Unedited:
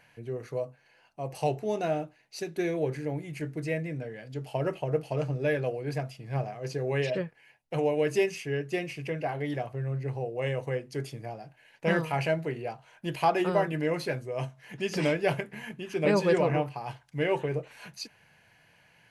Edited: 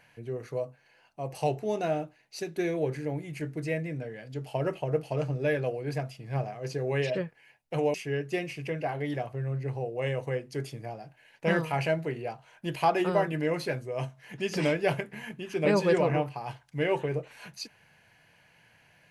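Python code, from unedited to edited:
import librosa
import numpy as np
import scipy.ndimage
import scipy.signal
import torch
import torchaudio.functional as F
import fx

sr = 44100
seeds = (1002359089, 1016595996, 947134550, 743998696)

y = fx.edit(x, sr, fx.cut(start_s=7.94, length_s=0.4), tone=tone)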